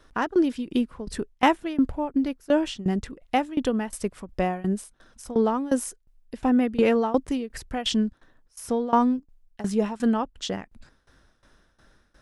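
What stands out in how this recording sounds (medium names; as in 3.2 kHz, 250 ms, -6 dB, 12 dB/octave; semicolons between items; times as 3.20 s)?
tremolo saw down 2.8 Hz, depth 90%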